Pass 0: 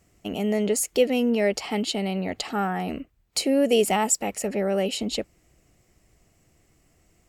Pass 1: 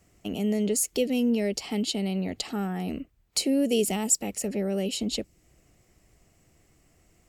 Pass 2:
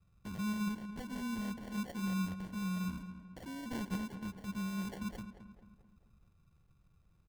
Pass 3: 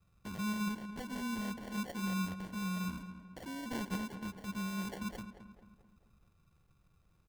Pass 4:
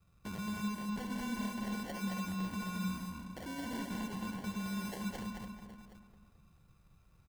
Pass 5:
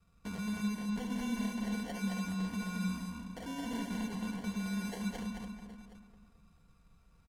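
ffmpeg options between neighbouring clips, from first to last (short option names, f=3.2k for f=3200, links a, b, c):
-filter_complex "[0:a]acrossover=split=420|3000[a][b][c];[b]acompressor=threshold=-48dB:ratio=2[d];[a][d][c]amix=inputs=3:normalize=0"
-filter_complex "[0:a]firequalizer=gain_entry='entry(180,0);entry(260,-16);entry(410,-26);entry(2600,-1);entry(4100,-25)':delay=0.05:min_phase=1,acrusher=samples=35:mix=1:aa=0.000001,asplit=2[a][b];[b]adelay=219,lowpass=f=2.3k:p=1,volume=-10dB,asplit=2[c][d];[d]adelay=219,lowpass=f=2.3k:p=1,volume=0.49,asplit=2[e][f];[f]adelay=219,lowpass=f=2.3k:p=1,volume=0.49,asplit=2[g][h];[h]adelay=219,lowpass=f=2.3k:p=1,volume=0.49,asplit=2[i][j];[j]adelay=219,lowpass=f=2.3k:p=1,volume=0.49[k];[a][c][e][g][i][k]amix=inputs=6:normalize=0,volume=-3.5dB"
-af "bass=f=250:g=-5,treble=f=4k:g=0,volume=3dB"
-filter_complex "[0:a]alimiter=level_in=11dB:limit=-24dB:level=0:latency=1:release=111,volume=-11dB,asplit=2[a][b];[b]aecho=0:1:72|218|287|768:0.376|0.668|0.398|0.178[c];[a][c]amix=inputs=2:normalize=0,volume=1.5dB"
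-af "lowpass=12k,aecho=1:1:4.3:0.48"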